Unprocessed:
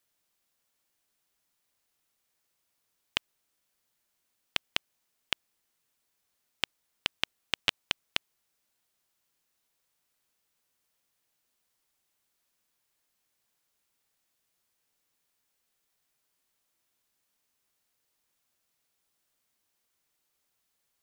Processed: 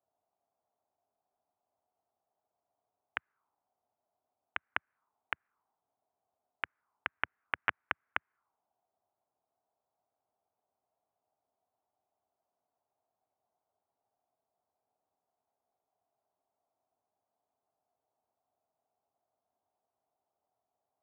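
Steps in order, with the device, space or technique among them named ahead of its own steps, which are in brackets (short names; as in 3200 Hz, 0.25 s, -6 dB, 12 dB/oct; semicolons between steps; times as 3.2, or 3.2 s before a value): envelope filter bass rig (envelope low-pass 680–1700 Hz up, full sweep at -44 dBFS; speaker cabinet 78–2300 Hz, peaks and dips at 150 Hz -8 dB, 210 Hz -6 dB, 330 Hz -7 dB, 520 Hz -9 dB, 1800 Hz -7 dB); low shelf 170 Hz -4 dB; gain +1 dB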